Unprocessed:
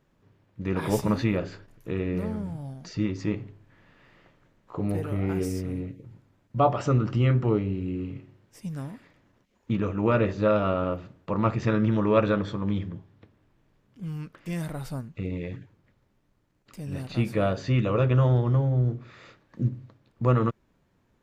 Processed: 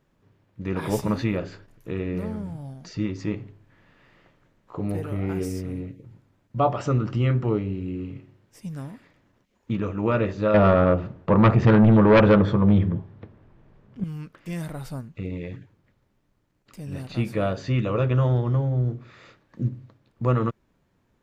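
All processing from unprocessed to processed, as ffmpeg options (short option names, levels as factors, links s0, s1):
-filter_complex "[0:a]asettb=1/sr,asplit=3[s0][s1][s2];[s0]atrim=end=10.544[s3];[s1]atrim=start=10.54:end=14.04,asetpts=PTS-STARTPTS,afade=t=in:d=0.004:c=qsin,afade=t=out:st=3.496:d=0.004:c=qsin,lowpass=f=1200:p=1,aeval=exprs='0.316*sin(PI/2*2.51*val(0)/0.316)':c=same,bandreject=f=290:w=8.1[s4];[s2]atrim=start=14.036[s5];[s3][s4]acrossfade=d=0.004:c1=hsin:c2=qsin[s6];[s6][s5]acrossfade=d=0.004:c1=qsin:c2=hsin"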